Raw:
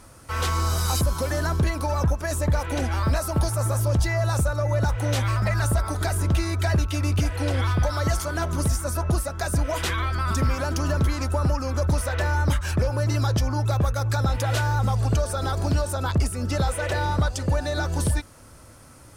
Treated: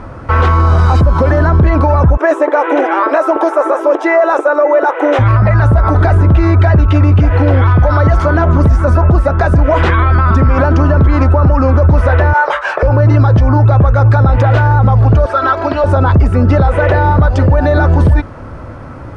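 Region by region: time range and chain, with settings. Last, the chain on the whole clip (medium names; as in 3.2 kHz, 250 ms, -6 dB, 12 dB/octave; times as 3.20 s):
2.17–5.19 s: brick-wall FIR high-pass 280 Hz + peaking EQ 4.5 kHz -12 dB 0.27 oct
12.33–12.83 s: inverse Chebyshev high-pass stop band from 250 Hz + companded quantiser 6-bit + doubling 19 ms -8 dB
15.26–15.84 s: band-pass filter 2.3 kHz, Q 0.57 + comb 3.1 ms, depth 72%
whole clip: low-pass 1.5 kHz 12 dB/octave; loudness maximiser +22 dB; trim -1 dB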